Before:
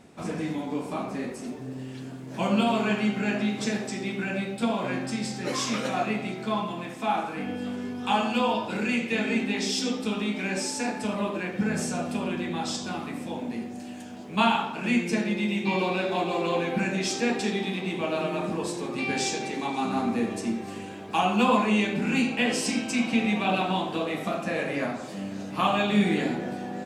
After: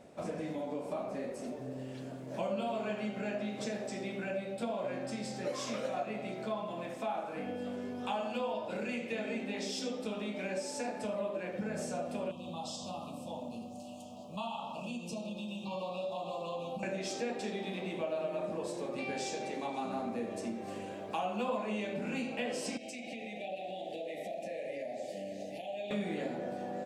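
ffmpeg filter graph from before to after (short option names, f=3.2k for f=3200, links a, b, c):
-filter_complex "[0:a]asettb=1/sr,asplit=3[a][b][c];[a]atrim=end=12.314[d];[b]atrim=start=12.31:end=16.83,asetpts=PTS-STARTPTS,afade=t=in:d=0.004:c=qsin,afade=t=out:st=4.516:d=0.004:c=qsin,asuperstop=centerf=1800:order=12:qfactor=1.3,equalizer=f=390:w=1.7:g=-14,acompressor=threshold=-33dB:ratio=2:attack=3.2:release=140:knee=1:detection=peak[e];[c]atrim=start=16.826[f];[d][e]acrossfade=d=0.004:c1=hsin:c2=qsin[g];[g][f]acrossfade=d=0.004:c1=qsin:c2=hsin,asettb=1/sr,asplit=3[h][i][j];[h]atrim=end=22.774[k];[i]atrim=start=22.77:end=25.91,asetpts=PTS-STARTPTS,afade=t=in:d=0.004:c=qsin,afade=t=out:st=3.136:d=0.004:c=qsin,lowshelf=f=230:g=-11,acompressor=threshold=-34dB:ratio=10:attack=3.2:release=140:knee=1:detection=peak,asuperstop=centerf=1200:order=12:qfactor=1.2[l];[j]atrim=start=25.906[m];[k][l]acrossfade=d=0.004:c1=hsin:c2=qsin[n];[n][m]acrossfade=d=0.004:c1=qsin:c2=hsin,equalizer=f=580:w=2.6:g=13.5,acompressor=threshold=-30dB:ratio=2.5,volume=-6.5dB"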